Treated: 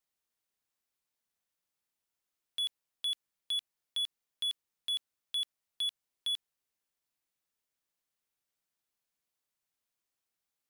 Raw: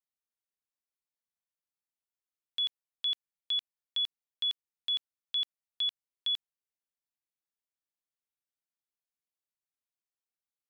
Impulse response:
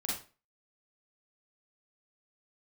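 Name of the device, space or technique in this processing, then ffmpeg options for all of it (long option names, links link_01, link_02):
saturation between pre-emphasis and de-emphasis: -af "highshelf=frequency=3800:gain=10,asoftclip=type=tanh:threshold=-32.5dB,highshelf=frequency=3800:gain=-10,volume=6.5dB"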